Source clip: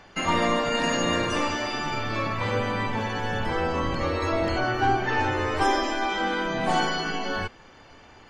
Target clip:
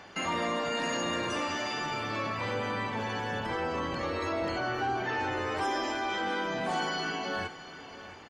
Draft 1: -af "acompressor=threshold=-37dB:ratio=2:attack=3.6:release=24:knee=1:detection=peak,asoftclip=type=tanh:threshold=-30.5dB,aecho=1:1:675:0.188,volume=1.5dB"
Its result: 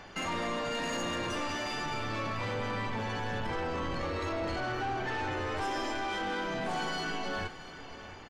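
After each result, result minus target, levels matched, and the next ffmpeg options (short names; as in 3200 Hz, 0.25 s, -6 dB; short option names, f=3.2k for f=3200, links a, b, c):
soft clip: distortion +19 dB; 125 Hz band +3.5 dB
-af "acompressor=threshold=-37dB:ratio=2:attack=3.6:release=24:knee=1:detection=peak,asoftclip=type=tanh:threshold=-18.5dB,aecho=1:1:675:0.188,volume=1.5dB"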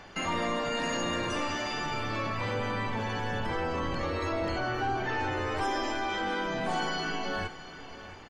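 125 Hz band +3.5 dB
-af "acompressor=threshold=-37dB:ratio=2:attack=3.6:release=24:knee=1:detection=peak,highpass=f=140:p=1,asoftclip=type=tanh:threshold=-18.5dB,aecho=1:1:675:0.188,volume=1.5dB"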